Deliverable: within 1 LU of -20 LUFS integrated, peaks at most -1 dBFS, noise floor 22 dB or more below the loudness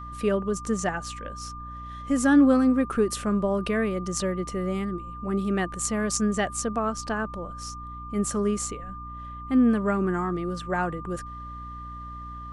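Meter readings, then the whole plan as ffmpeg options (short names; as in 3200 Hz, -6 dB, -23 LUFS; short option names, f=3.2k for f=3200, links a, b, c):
hum 60 Hz; harmonics up to 300 Hz; hum level -39 dBFS; steady tone 1200 Hz; tone level -38 dBFS; loudness -26.0 LUFS; peak -9.0 dBFS; loudness target -20.0 LUFS
-> -af "bandreject=f=60:t=h:w=4,bandreject=f=120:t=h:w=4,bandreject=f=180:t=h:w=4,bandreject=f=240:t=h:w=4,bandreject=f=300:t=h:w=4"
-af "bandreject=f=1.2k:w=30"
-af "volume=6dB"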